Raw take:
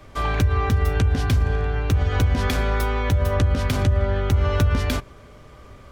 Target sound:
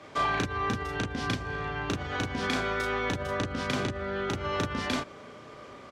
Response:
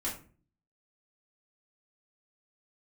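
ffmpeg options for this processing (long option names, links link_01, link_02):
-filter_complex "[0:a]acompressor=threshold=-22dB:ratio=6,highpass=200,lowpass=6900,asplit=2[link_01][link_02];[link_02]adelay=35,volume=-2dB[link_03];[link_01][link_03]amix=inputs=2:normalize=0"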